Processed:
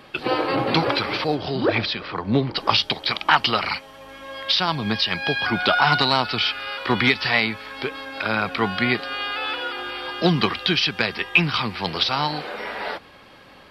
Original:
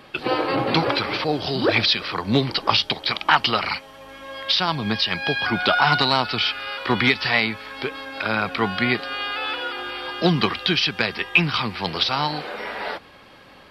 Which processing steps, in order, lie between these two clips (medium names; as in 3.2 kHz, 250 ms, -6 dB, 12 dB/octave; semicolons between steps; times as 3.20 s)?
1.34–2.55 s: low-pass 2.5 kHz -> 1.1 kHz 6 dB/octave